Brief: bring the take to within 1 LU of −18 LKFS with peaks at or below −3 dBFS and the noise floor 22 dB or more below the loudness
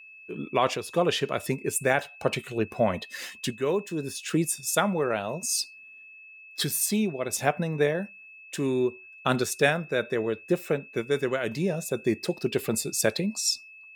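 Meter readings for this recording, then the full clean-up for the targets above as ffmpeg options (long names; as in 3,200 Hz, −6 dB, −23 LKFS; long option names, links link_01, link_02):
interfering tone 2,600 Hz; level of the tone −46 dBFS; integrated loudness −27.5 LKFS; sample peak −8.0 dBFS; target loudness −18.0 LKFS
→ -af "bandreject=frequency=2600:width=30"
-af "volume=9.5dB,alimiter=limit=-3dB:level=0:latency=1"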